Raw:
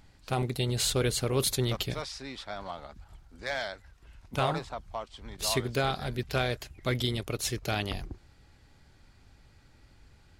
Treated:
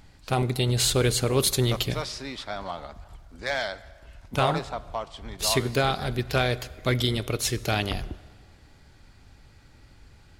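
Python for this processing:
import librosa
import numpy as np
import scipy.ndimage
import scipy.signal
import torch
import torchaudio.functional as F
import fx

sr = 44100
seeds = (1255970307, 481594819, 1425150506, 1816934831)

y = fx.rev_plate(x, sr, seeds[0], rt60_s=1.8, hf_ratio=0.75, predelay_ms=0, drr_db=17.0)
y = F.gain(torch.from_numpy(y), 5.0).numpy()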